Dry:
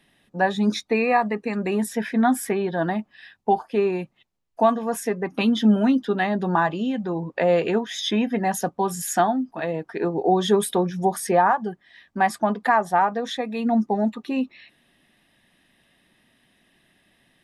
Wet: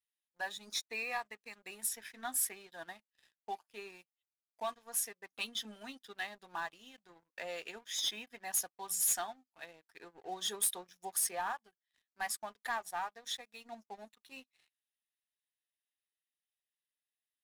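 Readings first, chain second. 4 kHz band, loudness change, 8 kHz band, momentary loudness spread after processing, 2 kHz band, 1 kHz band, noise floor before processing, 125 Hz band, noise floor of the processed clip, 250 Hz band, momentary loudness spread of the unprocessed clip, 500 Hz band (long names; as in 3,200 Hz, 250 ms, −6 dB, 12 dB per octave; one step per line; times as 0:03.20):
−7.5 dB, −14.5 dB, −1.0 dB, 19 LU, −14.0 dB, −20.0 dB, −66 dBFS, below −35 dB, below −85 dBFS, −34.0 dB, 8 LU, −25.5 dB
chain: first difference
leveller curve on the samples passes 3
expander for the loud parts 1.5 to 1, over −43 dBFS
level −9 dB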